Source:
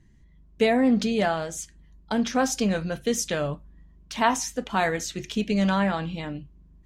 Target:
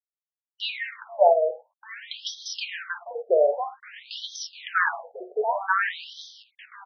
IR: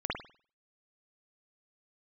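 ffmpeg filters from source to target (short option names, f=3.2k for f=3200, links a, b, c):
-filter_complex "[0:a]aemphasis=mode=reproduction:type=75kf,asplit=2[a][b];[b]adelay=1224,volume=-10dB,highshelf=f=4k:g=-27.6[c];[a][c]amix=inputs=2:normalize=0,aeval=exprs='val(0)*gte(abs(val(0)),0.0112)':c=same,asplit=2[d][e];[1:a]atrim=start_sample=2205,afade=t=out:st=0.16:d=0.01,atrim=end_sample=7497,highshelf=f=5.7k:g=9.5[f];[e][f]afir=irnorm=-1:irlink=0,volume=-14.5dB[g];[d][g]amix=inputs=2:normalize=0,afftfilt=real='re*between(b*sr/1024,530*pow(4500/530,0.5+0.5*sin(2*PI*0.52*pts/sr))/1.41,530*pow(4500/530,0.5+0.5*sin(2*PI*0.52*pts/sr))*1.41)':imag='im*between(b*sr/1024,530*pow(4500/530,0.5+0.5*sin(2*PI*0.52*pts/sr))/1.41,530*pow(4500/530,0.5+0.5*sin(2*PI*0.52*pts/sr))*1.41)':win_size=1024:overlap=0.75,volume=8.5dB"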